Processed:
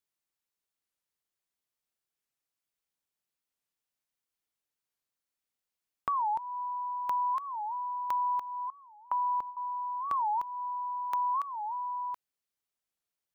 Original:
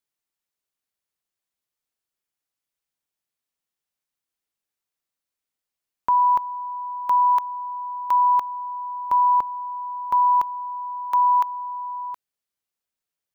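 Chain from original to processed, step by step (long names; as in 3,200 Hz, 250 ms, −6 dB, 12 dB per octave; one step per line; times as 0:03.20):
0:08.70–0:09.57: noise gate with hold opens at −19 dBFS
downward compressor 2.5 to 1, threshold −30 dBFS, peak gain reduction 9 dB
wow of a warped record 45 rpm, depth 250 cents
level −3 dB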